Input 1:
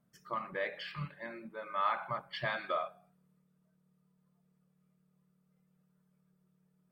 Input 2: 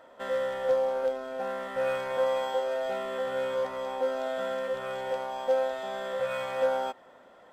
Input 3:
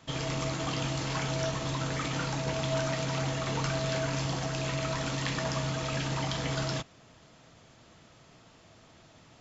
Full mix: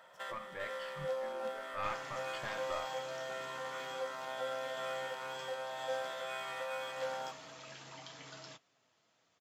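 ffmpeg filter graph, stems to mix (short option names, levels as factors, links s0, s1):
-filter_complex "[0:a]aeval=exprs='0.1*(cos(1*acos(clip(val(0)/0.1,-1,1)))-cos(1*PI/2))+0.0447*(cos(2*acos(clip(val(0)/0.1,-1,1)))-cos(2*PI/2))':c=same,volume=0.398,asplit=2[s0][s1];[1:a]highpass=f=1200:p=1,volume=1.19,asplit=2[s2][s3];[s3]volume=0.447[s4];[2:a]flanger=delay=6.7:depth=6.7:regen=-47:speed=0.3:shape=sinusoidal,adelay=1750,volume=0.282[s5];[s1]apad=whole_len=331750[s6];[s2][s6]sidechaincompress=threshold=0.00316:ratio=5:attack=8.2:release=1340[s7];[s7][s5]amix=inputs=2:normalize=0,highpass=f=600:p=1,acompressor=threshold=0.01:ratio=6,volume=1[s8];[s4]aecho=0:1:397:1[s9];[s0][s8][s9]amix=inputs=3:normalize=0"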